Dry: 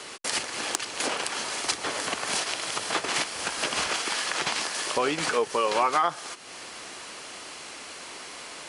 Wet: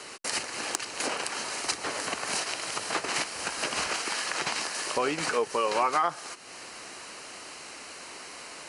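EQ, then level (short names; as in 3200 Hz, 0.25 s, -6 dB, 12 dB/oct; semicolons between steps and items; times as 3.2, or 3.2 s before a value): notch 3400 Hz, Q 7.1; -2.0 dB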